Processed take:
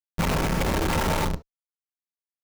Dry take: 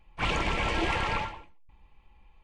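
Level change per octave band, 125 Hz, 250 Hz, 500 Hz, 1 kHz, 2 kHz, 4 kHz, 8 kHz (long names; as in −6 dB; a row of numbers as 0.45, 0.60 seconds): +8.5, +8.5, +6.5, +2.5, −0.5, +1.0, +11.5 decibels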